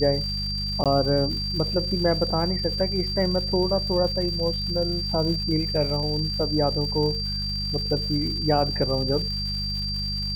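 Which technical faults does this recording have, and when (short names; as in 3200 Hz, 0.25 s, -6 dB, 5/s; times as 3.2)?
crackle 250/s -34 dBFS
hum 50 Hz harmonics 4 -31 dBFS
tone 4700 Hz -28 dBFS
0.84–0.86 gap 17 ms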